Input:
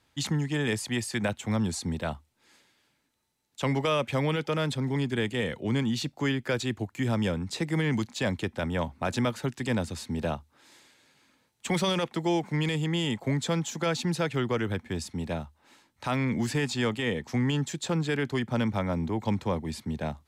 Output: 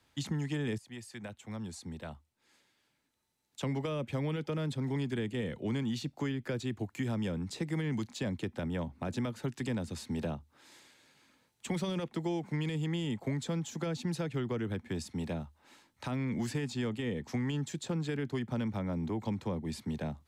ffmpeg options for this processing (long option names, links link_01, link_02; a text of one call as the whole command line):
ffmpeg -i in.wav -filter_complex "[0:a]asplit=2[link_01][link_02];[link_01]atrim=end=0.78,asetpts=PTS-STARTPTS,afade=type=out:start_time=0.776:duration=0.004:curve=hsin:silence=0.199526[link_03];[link_02]atrim=start=0.78,asetpts=PTS-STARTPTS,afade=type=in:duration=2.87:curve=qua:silence=0.199526[link_04];[link_03][link_04]concat=n=2:v=0:a=1,acrossover=split=100|430[link_05][link_06][link_07];[link_05]acompressor=threshold=-48dB:ratio=4[link_08];[link_06]acompressor=threshold=-31dB:ratio=4[link_09];[link_07]acompressor=threshold=-41dB:ratio=4[link_10];[link_08][link_09][link_10]amix=inputs=3:normalize=0,volume=-1.5dB" out.wav